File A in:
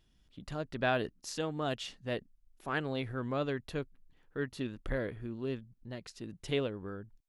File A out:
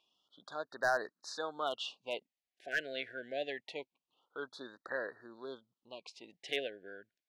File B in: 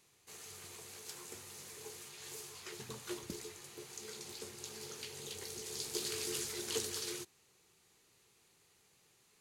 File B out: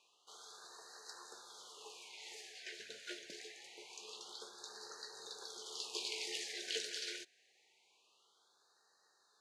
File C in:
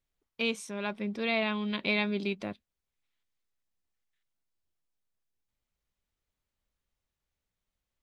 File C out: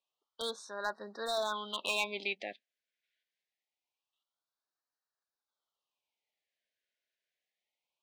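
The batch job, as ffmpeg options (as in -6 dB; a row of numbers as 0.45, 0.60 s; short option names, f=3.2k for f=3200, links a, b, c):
-af "highpass=730,lowpass=4.2k,asoftclip=type=hard:threshold=-26dB,afftfilt=real='re*(1-between(b*sr/1024,990*pow(2700/990,0.5+0.5*sin(2*PI*0.25*pts/sr))/1.41,990*pow(2700/990,0.5+0.5*sin(2*PI*0.25*pts/sr))*1.41))':imag='im*(1-between(b*sr/1024,990*pow(2700/990,0.5+0.5*sin(2*PI*0.25*pts/sr))/1.41,990*pow(2700/990,0.5+0.5*sin(2*PI*0.25*pts/sr))*1.41))':win_size=1024:overlap=0.75,volume=3.5dB"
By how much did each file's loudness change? -2.5, -3.0, -4.5 LU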